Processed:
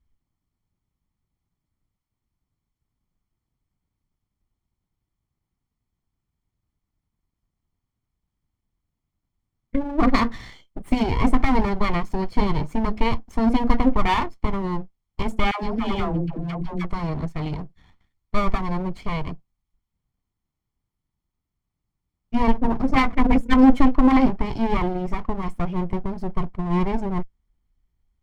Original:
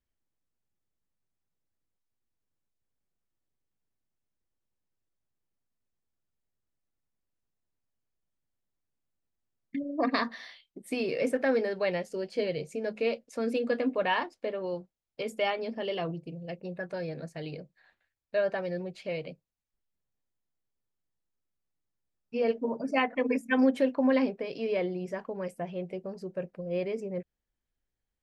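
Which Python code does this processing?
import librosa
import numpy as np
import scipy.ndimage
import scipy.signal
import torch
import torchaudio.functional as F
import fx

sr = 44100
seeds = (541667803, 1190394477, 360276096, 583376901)

y = fx.lower_of_two(x, sr, delay_ms=0.94)
y = fx.tilt_eq(y, sr, slope=-2.5)
y = fx.dispersion(y, sr, late='lows', ms=118.0, hz=540.0, at=(15.51, 16.85))
y = y * librosa.db_to_amplitude(8.0)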